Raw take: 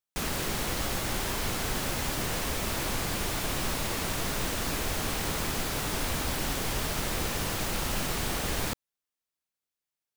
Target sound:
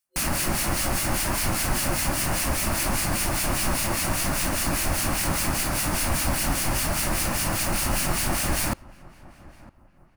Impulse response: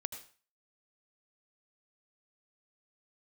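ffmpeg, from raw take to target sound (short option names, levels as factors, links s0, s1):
-filter_complex "[0:a]superequalizer=7b=0.316:13b=0.501:16b=1.78,acrossover=split=1700[s0][s1];[s0]aeval=exprs='val(0)*(1-0.7/2+0.7/2*cos(2*PI*5*n/s))':c=same[s2];[s1]aeval=exprs='val(0)*(1-0.7/2-0.7/2*cos(2*PI*5*n/s))':c=same[s3];[s2][s3]amix=inputs=2:normalize=0,asplit=2[s4][s5];[s5]adelay=959,lowpass=f=1400:p=1,volume=0.0944,asplit=2[s6][s7];[s7]adelay=959,lowpass=f=1400:p=1,volume=0.38,asplit=2[s8][s9];[s9]adelay=959,lowpass=f=1400:p=1,volume=0.38[s10];[s4][s6][s8][s10]amix=inputs=4:normalize=0,volume=2.82"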